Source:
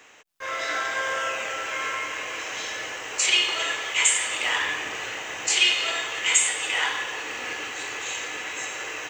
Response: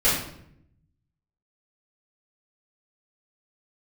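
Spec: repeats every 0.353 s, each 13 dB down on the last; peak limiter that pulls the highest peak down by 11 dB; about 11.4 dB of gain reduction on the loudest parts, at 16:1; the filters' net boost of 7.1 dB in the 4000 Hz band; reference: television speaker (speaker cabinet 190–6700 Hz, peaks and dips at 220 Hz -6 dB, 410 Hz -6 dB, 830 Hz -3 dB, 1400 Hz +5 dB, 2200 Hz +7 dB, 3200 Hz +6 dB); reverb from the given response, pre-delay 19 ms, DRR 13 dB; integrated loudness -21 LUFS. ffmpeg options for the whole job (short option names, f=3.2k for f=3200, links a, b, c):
-filter_complex "[0:a]equalizer=f=4k:t=o:g=3,acompressor=threshold=-25dB:ratio=16,alimiter=level_in=0.5dB:limit=-24dB:level=0:latency=1,volume=-0.5dB,aecho=1:1:353|706|1059:0.224|0.0493|0.0108,asplit=2[a][b];[1:a]atrim=start_sample=2205,adelay=19[c];[b][c]afir=irnorm=-1:irlink=0,volume=-29dB[d];[a][d]amix=inputs=2:normalize=0,highpass=f=190:w=0.5412,highpass=f=190:w=1.3066,equalizer=f=220:t=q:w=4:g=-6,equalizer=f=410:t=q:w=4:g=-6,equalizer=f=830:t=q:w=4:g=-3,equalizer=f=1.4k:t=q:w=4:g=5,equalizer=f=2.2k:t=q:w=4:g=7,equalizer=f=3.2k:t=q:w=4:g=6,lowpass=f=6.7k:w=0.5412,lowpass=f=6.7k:w=1.3066,volume=6dB"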